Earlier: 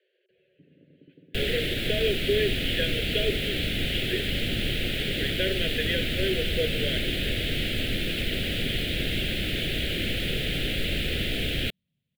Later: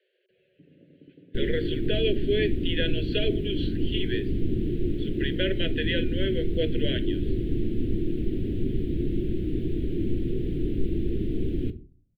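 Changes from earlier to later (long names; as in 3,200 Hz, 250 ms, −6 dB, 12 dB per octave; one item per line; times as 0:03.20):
second sound: add drawn EQ curve 240 Hz 0 dB, 360 Hz +7 dB, 580 Hz −21 dB, 3,300 Hz −28 dB
reverb: on, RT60 0.35 s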